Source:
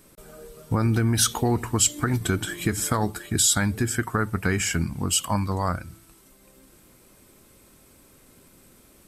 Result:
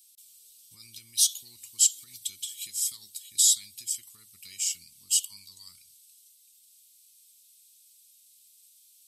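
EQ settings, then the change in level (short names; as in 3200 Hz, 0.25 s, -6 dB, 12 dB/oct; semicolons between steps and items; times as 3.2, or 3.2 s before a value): inverse Chebyshev high-pass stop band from 1700 Hz, stop band 40 dB; 0.0 dB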